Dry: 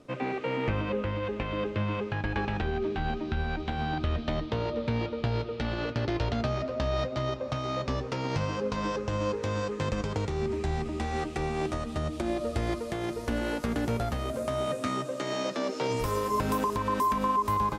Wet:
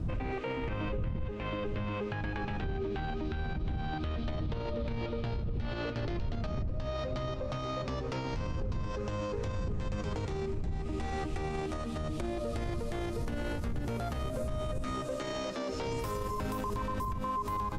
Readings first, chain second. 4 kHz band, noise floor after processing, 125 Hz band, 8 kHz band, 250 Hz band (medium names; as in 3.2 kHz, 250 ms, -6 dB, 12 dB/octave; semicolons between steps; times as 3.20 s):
-6.0 dB, -37 dBFS, -3.5 dB, -6.0 dB, -5.5 dB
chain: wind noise 86 Hz -25 dBFS; compression, threshold -24 dBFS, peak gain reduction 14.5 dB; peak limiter -26.5 dBFS, peak gain reduction 11 dB